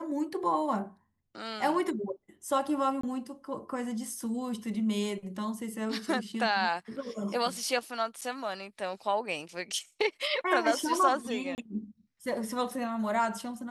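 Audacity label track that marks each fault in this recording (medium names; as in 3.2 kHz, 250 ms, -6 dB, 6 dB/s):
3.010000	3.030000	dropout 24 ms
8.210000	8.220000	dropout 7.2 ms
11.550000	11.580000	dropout 29 ms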